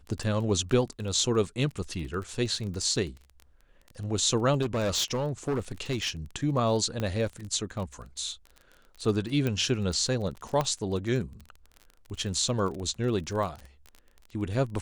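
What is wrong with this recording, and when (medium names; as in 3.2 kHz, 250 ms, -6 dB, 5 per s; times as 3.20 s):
crackle 26 per s -35 dBFS
4.61–6.10 s: clipped -24 dBFS
7.00 s: pop -18 dBFS
9.47 s: pop -16 dBFS
10.61 s: pop -14 dBFS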